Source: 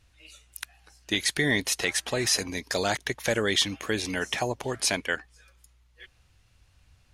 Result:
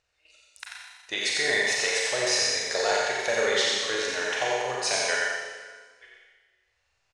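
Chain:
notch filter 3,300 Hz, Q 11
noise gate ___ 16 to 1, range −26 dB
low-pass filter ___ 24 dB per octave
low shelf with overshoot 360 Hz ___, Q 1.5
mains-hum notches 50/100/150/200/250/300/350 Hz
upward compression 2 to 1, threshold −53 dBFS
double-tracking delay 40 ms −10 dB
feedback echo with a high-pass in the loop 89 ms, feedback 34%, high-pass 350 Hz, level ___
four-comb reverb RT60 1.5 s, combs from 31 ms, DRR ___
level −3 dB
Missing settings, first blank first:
−48 dBFS, 7,900 Hz, −11.5 dB, −4 dB, −1 dB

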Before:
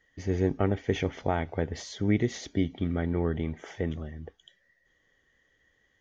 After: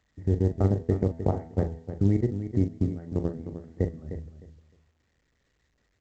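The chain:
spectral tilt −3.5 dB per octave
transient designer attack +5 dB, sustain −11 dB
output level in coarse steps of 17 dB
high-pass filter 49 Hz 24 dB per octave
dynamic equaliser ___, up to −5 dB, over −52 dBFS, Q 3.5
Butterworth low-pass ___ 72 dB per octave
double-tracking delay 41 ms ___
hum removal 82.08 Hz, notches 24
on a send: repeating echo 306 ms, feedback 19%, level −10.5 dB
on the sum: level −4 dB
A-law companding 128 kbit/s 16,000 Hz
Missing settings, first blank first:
1,500 Hz, 2,100 Hz, −9.5 dB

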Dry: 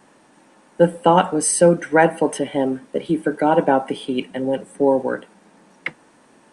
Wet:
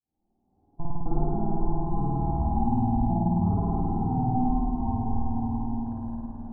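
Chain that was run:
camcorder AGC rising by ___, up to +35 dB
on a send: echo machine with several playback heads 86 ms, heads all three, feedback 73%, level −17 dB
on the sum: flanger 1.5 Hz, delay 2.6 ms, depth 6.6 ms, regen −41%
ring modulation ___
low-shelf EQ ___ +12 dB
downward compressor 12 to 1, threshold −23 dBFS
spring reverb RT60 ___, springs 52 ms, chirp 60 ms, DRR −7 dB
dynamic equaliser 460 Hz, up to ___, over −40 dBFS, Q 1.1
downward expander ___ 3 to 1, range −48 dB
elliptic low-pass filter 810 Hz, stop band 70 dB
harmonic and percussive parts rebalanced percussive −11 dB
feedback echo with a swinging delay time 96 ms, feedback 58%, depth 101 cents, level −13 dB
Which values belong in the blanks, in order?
7.2 dB per second, 510 Hz, 210 Hz, 2.7 s, −4 dB, −33 dBFS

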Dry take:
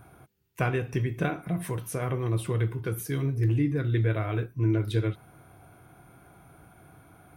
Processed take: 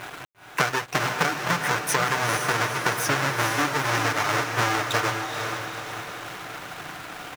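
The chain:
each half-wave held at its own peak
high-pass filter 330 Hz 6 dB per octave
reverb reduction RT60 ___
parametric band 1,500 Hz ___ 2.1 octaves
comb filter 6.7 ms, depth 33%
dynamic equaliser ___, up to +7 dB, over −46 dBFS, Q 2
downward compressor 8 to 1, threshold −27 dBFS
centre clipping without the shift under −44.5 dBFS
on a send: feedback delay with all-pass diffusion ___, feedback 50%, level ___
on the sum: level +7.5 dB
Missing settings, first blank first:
0.53 s, +14 dB, 5,900 Hz, 472 ms, −5 dB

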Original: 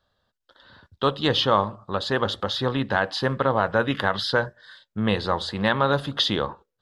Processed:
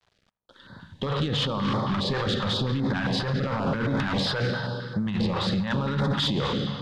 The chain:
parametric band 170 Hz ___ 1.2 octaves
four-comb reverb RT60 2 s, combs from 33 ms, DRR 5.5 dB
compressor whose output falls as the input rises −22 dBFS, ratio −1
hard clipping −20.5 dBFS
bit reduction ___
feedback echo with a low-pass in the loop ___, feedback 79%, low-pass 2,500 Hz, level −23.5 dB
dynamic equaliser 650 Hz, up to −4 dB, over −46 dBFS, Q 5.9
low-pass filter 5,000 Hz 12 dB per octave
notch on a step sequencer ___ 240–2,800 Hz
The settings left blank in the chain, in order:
+11.5 dB, 10 bits, 83 ms, 7.5 Hz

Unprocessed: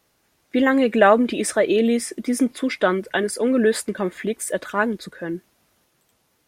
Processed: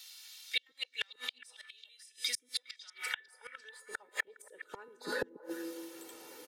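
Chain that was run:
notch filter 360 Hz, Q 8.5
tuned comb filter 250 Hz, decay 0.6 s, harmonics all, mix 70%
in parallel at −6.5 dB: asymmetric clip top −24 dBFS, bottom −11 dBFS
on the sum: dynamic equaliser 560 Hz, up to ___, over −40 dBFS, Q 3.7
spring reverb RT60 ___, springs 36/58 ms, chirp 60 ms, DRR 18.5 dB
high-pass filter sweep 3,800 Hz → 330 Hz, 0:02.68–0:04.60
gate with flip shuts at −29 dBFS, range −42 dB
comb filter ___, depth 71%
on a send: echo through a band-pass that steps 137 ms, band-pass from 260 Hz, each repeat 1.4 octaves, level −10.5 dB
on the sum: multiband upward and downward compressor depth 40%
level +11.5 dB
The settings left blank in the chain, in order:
−7 dB, 1.4 s, 2.2 ms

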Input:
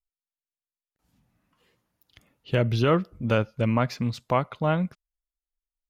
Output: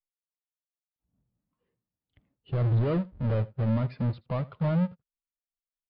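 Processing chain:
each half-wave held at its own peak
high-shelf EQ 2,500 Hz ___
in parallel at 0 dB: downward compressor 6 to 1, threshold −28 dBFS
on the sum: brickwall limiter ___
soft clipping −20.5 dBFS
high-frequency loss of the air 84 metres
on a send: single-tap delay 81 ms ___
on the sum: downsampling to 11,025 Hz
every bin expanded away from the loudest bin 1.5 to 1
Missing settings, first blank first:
−3 dB, −12 dBFS, −15.5 dB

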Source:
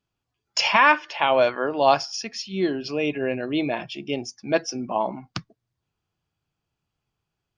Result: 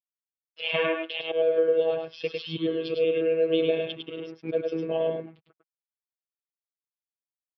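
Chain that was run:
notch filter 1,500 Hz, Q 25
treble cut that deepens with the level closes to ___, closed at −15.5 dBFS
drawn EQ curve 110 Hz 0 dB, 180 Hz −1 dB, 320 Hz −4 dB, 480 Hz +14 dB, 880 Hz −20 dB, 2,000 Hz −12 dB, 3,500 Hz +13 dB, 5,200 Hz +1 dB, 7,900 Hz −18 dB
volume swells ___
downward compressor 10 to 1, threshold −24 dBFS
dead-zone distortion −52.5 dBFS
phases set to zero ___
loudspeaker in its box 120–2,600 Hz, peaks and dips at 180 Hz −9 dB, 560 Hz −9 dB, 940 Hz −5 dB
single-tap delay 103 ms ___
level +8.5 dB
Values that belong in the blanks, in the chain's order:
1,600 Hz, 231 ms, 162 Hz, −4 dB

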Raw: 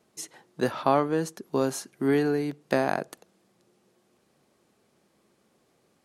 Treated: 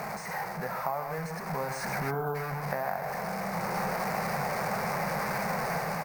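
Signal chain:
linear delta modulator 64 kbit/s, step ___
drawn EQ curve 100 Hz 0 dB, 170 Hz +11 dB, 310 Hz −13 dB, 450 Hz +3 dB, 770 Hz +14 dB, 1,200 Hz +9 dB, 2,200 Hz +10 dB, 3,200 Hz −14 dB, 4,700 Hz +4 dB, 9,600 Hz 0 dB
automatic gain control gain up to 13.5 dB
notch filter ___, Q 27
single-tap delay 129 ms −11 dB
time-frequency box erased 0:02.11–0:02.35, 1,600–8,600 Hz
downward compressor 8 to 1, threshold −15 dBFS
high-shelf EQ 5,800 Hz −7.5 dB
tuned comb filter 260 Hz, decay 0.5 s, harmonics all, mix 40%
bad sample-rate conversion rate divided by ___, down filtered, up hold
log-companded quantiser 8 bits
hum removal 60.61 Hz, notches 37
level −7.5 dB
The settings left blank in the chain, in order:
−23.5 dBFS, 8,000 Hz, 3×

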